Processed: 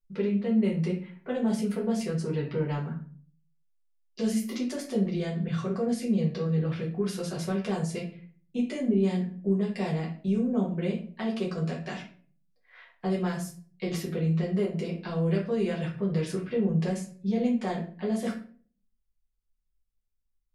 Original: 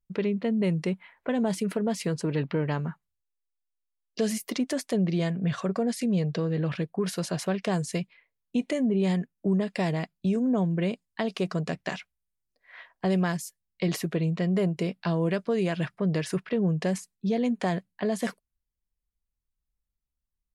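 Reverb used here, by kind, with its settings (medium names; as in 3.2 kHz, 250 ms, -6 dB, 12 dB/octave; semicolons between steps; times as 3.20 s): simulated room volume 33 m³, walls mixed, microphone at 1 m; trim -10 dB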